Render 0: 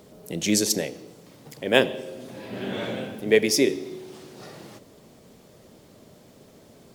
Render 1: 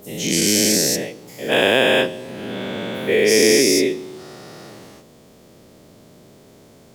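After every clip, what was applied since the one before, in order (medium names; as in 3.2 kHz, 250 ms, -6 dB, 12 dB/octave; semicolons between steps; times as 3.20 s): every event in the spectrogram widened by 480 ms; trim -2.5 dB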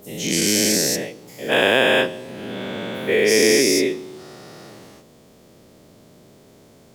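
dynamic bell 1.3 kHz, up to +4 dB, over -32 dBFS, Q 1; trim -2 dB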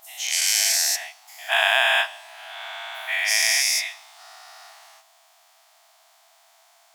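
brick-wall FIR high-pass 640 Hz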